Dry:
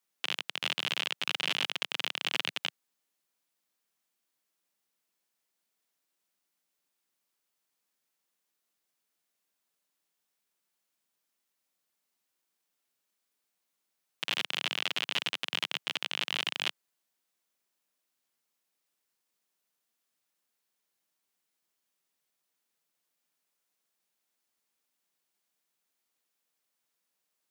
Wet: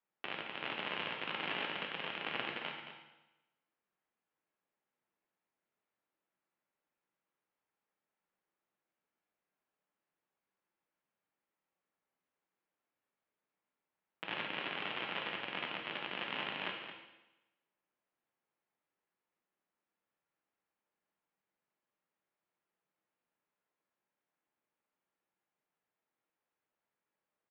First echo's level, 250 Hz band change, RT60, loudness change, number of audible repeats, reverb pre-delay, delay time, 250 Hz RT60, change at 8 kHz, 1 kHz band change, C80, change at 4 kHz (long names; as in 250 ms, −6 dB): −10.0 dB, +1.0 dB, 1.0 s, −7.5 dB, 1, 9 ms, 221 ms, 1.0 s, below −30 dB, 0.0 dB, 4.5 dB, −11.0 dB